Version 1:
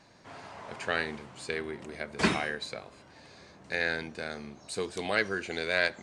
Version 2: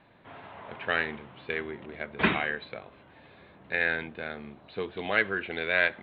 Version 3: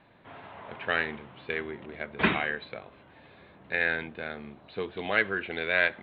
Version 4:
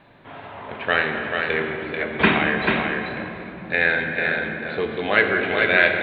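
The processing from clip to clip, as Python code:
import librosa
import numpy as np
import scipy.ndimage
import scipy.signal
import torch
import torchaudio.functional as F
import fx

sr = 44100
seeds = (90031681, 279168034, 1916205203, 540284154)

y1 = scipy.signal.sosfilt(scipy.signal.butter(12, 3700.0, 'lowpass', fs=sr, output='sos'), x)
y1 = fx.dynamic_eq(y1, sr, hz=2000.0, q=0.78, threshold_db=-38.0, ratio=4.0, max_db=4)
y2 = y1
y3 = y2 + 10.0 ** (-4.5 / 20.0) * np.pad(y2, (int(439 * sr / 1000.0), 0))[:len(y2)]
y3 = fx.room_shoebox(y3, sr, seeds[0], volume_m3=200.0, walls='hard', distance_m=0.32)
y3 = y3 * librosa.db_to_amplitude(7.0)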